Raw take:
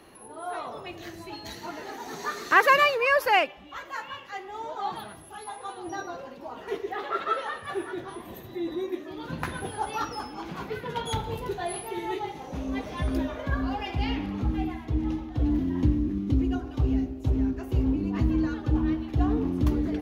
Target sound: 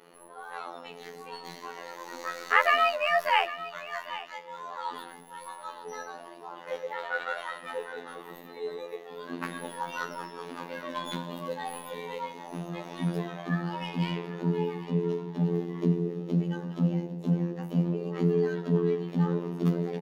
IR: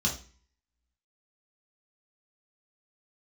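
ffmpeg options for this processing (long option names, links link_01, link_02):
-filter_complex "[0:a]afreqshift=110,acrossover=split=150|1200|3600[link_01][link_02][link_03][link_04];[link_04]aeval=exprs='(tanh(224*val(0)+0.6)-tanh(0.6))/224':channel_layout=same[link_05];[link_01][link_02][link_03][link_05]amix=inputs=4:normalize=0,afftfilt=real='hypot(re,im)*cos(PI*b)':imag='0':win_size=2048:overlap=0.75,aecho=1:1:800:0.188,adynamicequalizer=threshold=0.00562:dfrequency=3100:dqfactor=0.7:tfrequency=3100:tqfactor=0.7:attack=5:release=100:ratio=0.375:range=1.5:mode=boostabove:tftype=highshelf"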